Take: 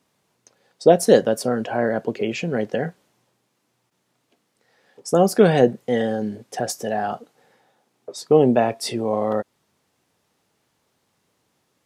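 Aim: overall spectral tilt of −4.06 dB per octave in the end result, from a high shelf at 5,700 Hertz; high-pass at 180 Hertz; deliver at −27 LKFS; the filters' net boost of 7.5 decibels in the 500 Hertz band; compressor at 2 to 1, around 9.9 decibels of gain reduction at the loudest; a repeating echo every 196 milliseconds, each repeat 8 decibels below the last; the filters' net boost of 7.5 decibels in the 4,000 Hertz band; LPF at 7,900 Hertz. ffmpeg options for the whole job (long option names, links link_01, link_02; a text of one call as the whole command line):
ffmpeg -i in.wav -af "highpass=180,lowpass=7900,equalizer=frequency=500:width_type=o:gain=8.5,equalizer=frequency=4000:width_type=o:gain=8.5,highshelf=frequency=5700:gain=4,acompressor=threshold=-19dB:ratio=2,aecho=1:1:196|392|588|784|980:0.398|0.159|0.0637|0.0255|0.0102,volume=-6.5dB" out.wav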